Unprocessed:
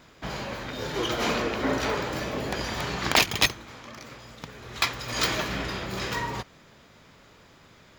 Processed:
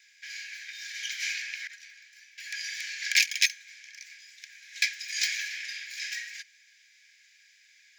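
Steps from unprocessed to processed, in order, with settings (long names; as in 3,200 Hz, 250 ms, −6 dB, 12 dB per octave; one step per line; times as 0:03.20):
0:01.67–0:02.38: noise gate −23 dBFS, range −16 dB
Chebyshev high-pass with heavy ripple 1,600 Hz, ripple 9 dB
high-shelf EQ 7,600 Hz −4 dB
level +4.5 dB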